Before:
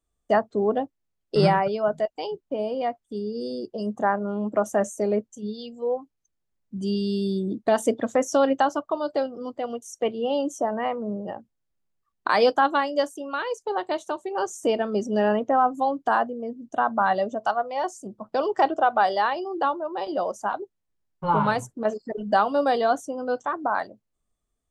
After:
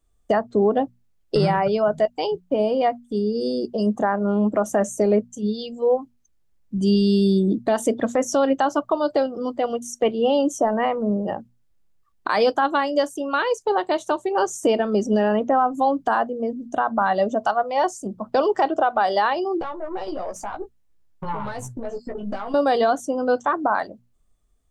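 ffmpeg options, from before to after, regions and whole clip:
-filter_complex "[0:a]asettb=1/sr,asplit=3[s0][s1][s2];[s0]atrim=end=19.614[s3];[s1]atrim=start=19.61:end=22.54,asetpts=PTS-STARTPTS,afade=t=in:d=0.004:c=qsin,afade=t=out:st=2.926:d=0.004:c=qsin,acompressor=threshold=0.0224:ratio=6:attack=3.2:release=140:knee=1:detection=peak,aeval=exprs='(tanh(25.1*val(0)+0.35)-tanh(0.35))/25.1':c=same,asplit=2[s4][s5];[s5]adelay=16,volume=0.562[s6];[s4][s6]amix=inputs=2:normalize=0,atrim=end_sample=129213[s7];[s2]atrim=start=22.536[s8];[s3][s7]acrossfade=d=0.004:c1=hsin:c2=qsin[s9];[s9][s8]acrossfade=d=0.004:c1=qsin:c2=hsin,lowshelf=f=100:g=9.5,bandreject=f=60:t=h:w=6,bandreject=f=120:t=h:w=6,bandreject=f=180:t=h:w=6,bandreject=f=240:t=h:w=6,alimiter=limit=0.15:level=0:latency=1:release=190,volume=2.11"

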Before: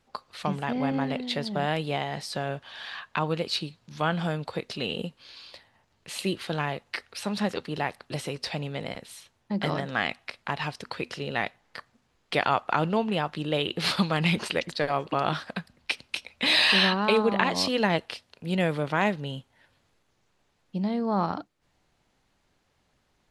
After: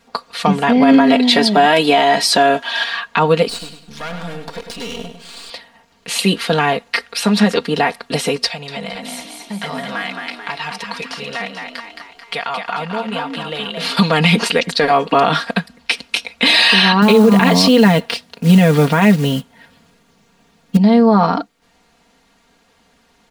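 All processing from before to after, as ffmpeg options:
-filter_complex "[0:a]asettb=1/sr,asplit=3[s0][s1][s2];[s0]atrim=end=0.824[s3];[s1]atrim=start=0.82:end=2.84,asetpts=PTS-STARTPTS,afade=t=in:d=0.004:c=qsin,afade=t=out:st=2.016:d=0.004:c=qsin,highpass=f=230:p=1,aecho=1:1:3.1:0.49,atrim=end_sample=89082,acontrast=34[s4];[s2]atrim=start=2.836[s5];[s3][s4]acrossfade=d=0.004:c1=hsin:c2=qsin[s6];[s6][s5]acrossfade=d=0.004:c1=qsin:c2=hsin,asettb=1/sr,asplit=3[s7][s8][s9];[s7]atrim=end=3.494[s10];[s8]atrim=start=3.49:end=5.5,asetpts=PTS-STARTPTS,afade=t=in:d=0.004:c=qsin,afade=t=out:st=2.006:d=0.004:c=qsin,aeval=exprs='max(val(0),0)':c=same,acompressor=threshold=0.00708:ratio=2:attack=3.2:release=140:knee=1:detection=peak,aecho=1:1:101|202|303|404:0.398|0.131|0.0434|0.0143,atrim=end_sample=88641[s11];[s9]atrim=start=5.496[s12];[s10][s11]acrossfade=d=0.004:c1=hsin:c2=qsin[s13];[s13][s12]acrossfade=d=0.004:c1=qsin:c2=hsin,asettb=1/sr,asplit=3[s14][s15][s16];[s14]atrim=end=8.464[s17];[s15]atrim=start=8.46:end=13.97,asetpts=PTS-STARTPTS,afade=t=in:d=0.004:c=qsin,afade=t=out:st=5.506:d=0.004:c=qsin,equalizer=f=300:t=o:w=1.1:g=-13,acompressor=threshold=0.00631:ratio=2:attack=3.2:release=140:knee=1:detection=peak,asplit=8[s18][s19][s20][s21][s22][s23][s24][s25];[s19]adelay=219,afreqshift=55,volume=0.562[s26];[s20]adelay=438,afreqshift=110,volume=0.302[s27];[s21]adelay=657,afreqshift=165,volume=0.164[s28];[s22]adelay=876,afreqshift=220,volume=0.0881[s29];[s23]adelay=1095,afreqshift=275,volume=0.0479[s30];[s24]adelay=1314,afreqshift=330,volume=0.0257[s31];[s25]adelay=1533,afreqshift=385,volume=0.014[s32];[s18][s26][s27][s28][s29][s30][s31][s32]amix=inputs=8:normalize=0,atrim=end_sample=242991[s33];[s16]atrim=start=13.966[s34];[s17][s33]acrossfade=d=0.004:c1=hsin:c2=qsin[s35];[s35][s34]acrossfade=d=0.004:c1=qsin:c2=hsin,asettb=1/sr,asplit=3[s36][s37][s38];[s36]atrim=end=17.024[s39];[s37]atrim=start=17.02:end=20.77,asetpts=PTS-STARTPTS,afade=t=in:d=0.004:c=qsin,afade=t=out:st=3.746:d=0.004:c=qsin,equalizer=f=140:w=0.83:g=10,acrusher=bits=6:mode=log:mix=0:aa=0.000001[s40];[s38]atrim=start=20.766[s41];[s39][s40]acrossfade=d=0.004:c1=hsin:c2=qsin[s42];[s42][s41]acrossfade=d=0.004:c1=qsin:c2=hsin,lowshelf=f=67:g=-12,aecho=1:1:4.3:0.83,alimiter=level_in=5.31:limit=0.891:release=50:level=0:latency=1,volume=0.891"

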